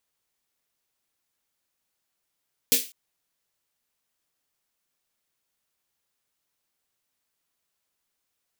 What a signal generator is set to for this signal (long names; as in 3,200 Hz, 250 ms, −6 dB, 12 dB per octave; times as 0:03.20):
synth snare length 0.20 s, tones 260 Hz, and 470 Hz, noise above 2,400 Hz, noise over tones 11.5 dB, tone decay 0.21 s, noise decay 0.32 s